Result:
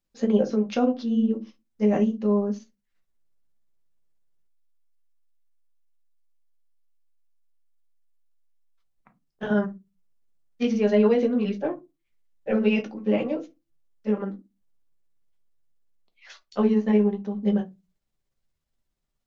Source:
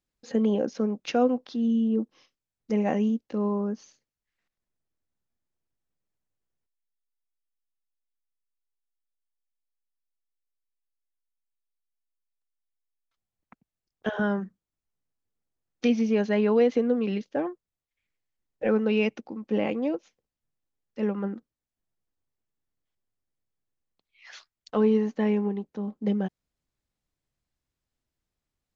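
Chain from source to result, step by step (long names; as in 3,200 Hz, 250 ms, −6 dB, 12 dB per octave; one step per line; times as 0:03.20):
rectangular room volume 130 cubic metres, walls furnished, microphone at 1.2 metres
time stretch by overlap-add 0.67×, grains 119 ms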